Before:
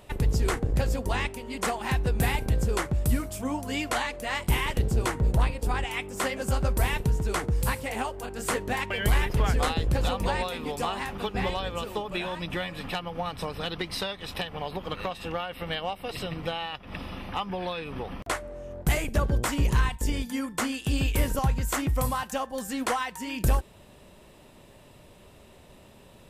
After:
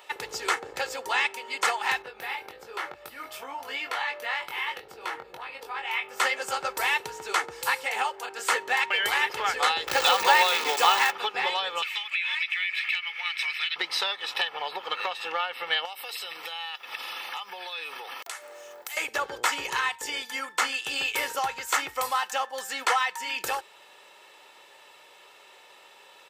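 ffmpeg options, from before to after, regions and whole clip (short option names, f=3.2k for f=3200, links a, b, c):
-filter_complex "[0:a]asettb=1/sr,asplit=3[a][b][c];[a]atrim=end=2.024[d];[b]atrim=start=2.02:end=6.2,asetpts=PTS-STARTPTS,afade=t=in:d=0.004:c=qsin,afade=t=out:st=4.176:d=0.004:c=qsin,equalizer=f=7.4k:w=1.2:g=-12.5,acompressor=threshold=-31dB:ratio=6:attack=3.2:release=140:knee=1:detection=peak,asplit=2[e][f];[f]adelay=22,volume=-5dB[g];[e][g]amix=inputs=2:normalize=0,atrim=end_sample=184338[h];[c]atrim=start=6.196[i];[d][h]acrossfade=d=0.004:c1=hsin:c2=qsin[j];[j][i]acrossfade=d=0.004:c1=qsin:c2=hsin,asettb=1/sr,asplit=3[k][l][m];[k]atrim=end=9.874[n];[l]atrim=start=9.87:end=11.12,asetpts=PTS-STARTPTS,afade=t=in:d=0.004:c=qsin,afade=t=out:st=1.246:d=0.004:c=qsin,acontrast=42,acrusher=bits=6:dc=4:mix=0:aa=0.000001[o];[m]atrim=start=11.116[p];[n][o]acrossfade=d=0.004:c1=hsin:c2=qsin[q];[q][p]acrossfade=d=0.004:c1=qsin:c2=hsin,asettb=1/sr,asplit=3[r][s][t];[r]atrim=end=11.824[u];[s]atrim=start=11.82:end=13.76,asetpts=PTS-STARTPTS,afade=t=in:d=0.004:c=qsin,afade=t=out:st=1.936:d=0.004:c=qsin,highpass=f=2.2k:t=q:w=6.6,acompressor=threshold=-30dB:ratio=12:attack=3.2:release=140:knee=1:detection=peak[v];[t]atrim=start=13.756[w];[u][v]acrossfade=d=0.004:c1=hsin:c2=qsin[x];[x][w]acrossfade=d=0.004:c1=qsin:c2=hsin,asettb=1/sr,asplit=3[y][z][aa];[y]atrim=end=15.854[ab];[z]atrim=start=15.85:end=18.97,asetpts=PTS-STARTPTS,afade=t=in:d=0.004:c=qsin,afade=t=out:st=3.116:d=0.004:c=qsin,highpass=f=230:p=1,aemphasis=mode=production:type=75fm,acompressor=threshold=-36dB:ratio=10:attack=3.2:release=140:knee=1:detection=peak[ac];[aa]atrim=start=18.966[ad];[ab][ac]acrossfade=d=0.004:c1=hsin:c2=qsin[ae];[ae][ad]acrossfade=d=0.004:c1=qsin:c2=hsin,highpass=970,equalizer=f=11k:t=o:w=0.92:g=-12,aecho=1:1:2.3:0.47,volume=7dB"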